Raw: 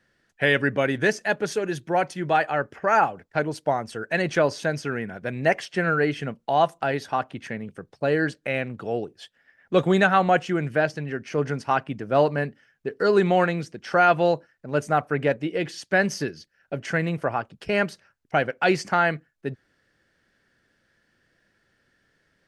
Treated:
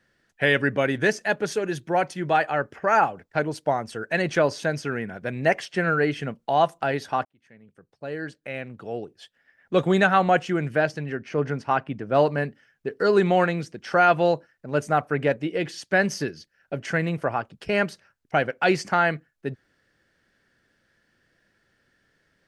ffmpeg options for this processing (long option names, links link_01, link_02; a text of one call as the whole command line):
ffmpeg -i in.wav -filter_complex "[0:a]asettb=1/sr,asplit=3[link_01][link_02][link_03];[link_01]atrim=end=11.154[link_04];[link_02]atrim=start=11.15:end=12.14,asetpts=PTS-STARTPTS,afade=type=in:duration=0.004:curve=qsin,afade=type=out:start_time=0.986:duration=0.004:curve=qsin,highshelf=frequency=5600:gain=-11.5[link_05];[link_03]atrim=start=12.136[link_06];[link_04][link_05]acrossfade=duration=0.004:curve1=hsin:curve2=qsin[link_07];[link_07][link_06]acrossfade=duration=0.004:curve1=qsin:curve2=hsin,asplit=2[link_08][link_09];[link_08]atrim=end=7.25,asetpts=PTS-STARTPTS,afade=type=out:start_time=7.246:duration=0.004:curve=hsin[link_10];[link_09]atrim=start=7.25,asetpts=PTS-STARTPTS,afade=type=in:duration=2.85[link_11];[link_10][link_11]concat=n=2:v=0:a=1" out.wav